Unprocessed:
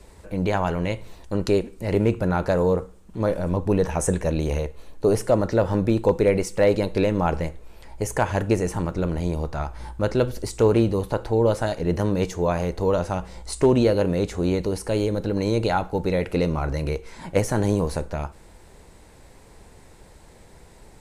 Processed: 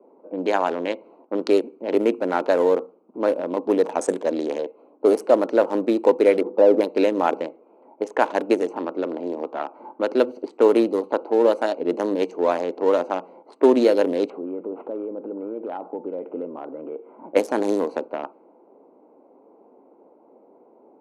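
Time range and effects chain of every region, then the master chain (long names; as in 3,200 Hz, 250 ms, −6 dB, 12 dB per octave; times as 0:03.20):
0:06.41–0:06.81: low-pass filter 1,100 Hz 24 dB per octave + envelope flattener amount 50%
0:08.62–0:10.10: running median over 3 samples + parametric band 170 Hz −3.5 dB 0.82 octaves + multiband upward and downward compressor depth 40%
0:14.30–0:17.31: downward compressor 5 to 1, threshold −27 dBFS + linearly interpolated sample-rate reduction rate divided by 8×
whole clip: adaptive Wiener filter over 25 samples; low-pass that shuts in the quiet parts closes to 940 Hz, open at −17 dBFS; elliptic high-pass filter 260 Hz, stop band 80 dB; level +4 dB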